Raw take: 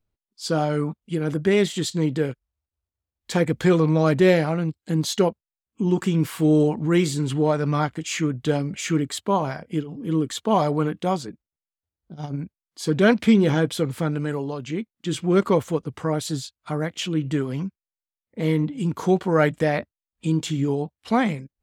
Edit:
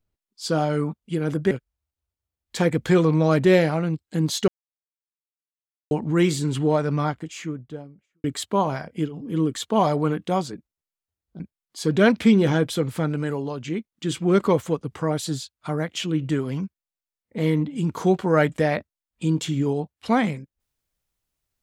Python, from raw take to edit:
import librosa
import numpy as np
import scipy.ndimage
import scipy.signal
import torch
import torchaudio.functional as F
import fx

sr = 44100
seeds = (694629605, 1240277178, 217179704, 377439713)

y = fx.studio_fade_out(x, sr, start_s=7.41, length_s=1.58)
y = fx.edit(y, sr, fx.cut(start_s=1.51, length_s=0.75),
    fx.silence(start_s=5.23, length_s=1.43),
    fx.cut(start_s=12.15, length_s=0.27), tone=tone)